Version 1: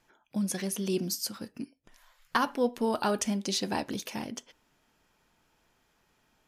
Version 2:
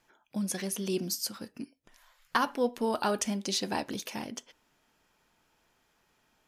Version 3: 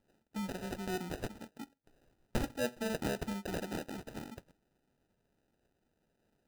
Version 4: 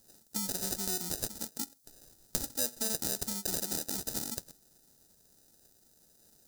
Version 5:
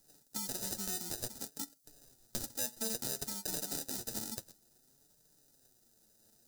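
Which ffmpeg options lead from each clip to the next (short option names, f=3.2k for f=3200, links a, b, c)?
-af "lowshelf=f=250:g=-4"
-af "acrusher=samples=40:mix=1:aa=0.000001,volume=-6.5dB"
-af "acompressor=threshold=-44dB:ratio=6,aexciter=amount=5.6:drive=8.7:freq=4k,volume=5.5dB"
-filter_complex "[0:a]acrossover=split=400[a][b];[b]asoftclip=type=hard:threshold=-17.5dB[c];[a][c]amix=inputs=2:normalize=0,flanger=delay=6.6:depth=2.7:regen=34:speed=0.57:shape=sinusoidal"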